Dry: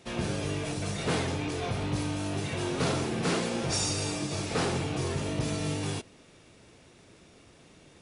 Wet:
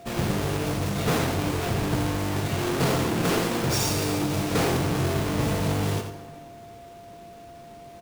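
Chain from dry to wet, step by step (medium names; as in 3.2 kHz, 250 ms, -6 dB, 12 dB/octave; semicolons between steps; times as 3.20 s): square wave that keeps the level; whistle 690 Hz -44 dBFS; echo from a far wall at 15 m, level -8 dB; plate-style reverb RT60 1.8 s, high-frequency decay 0.6×, pre-delay 0 ms, DRR 9 dB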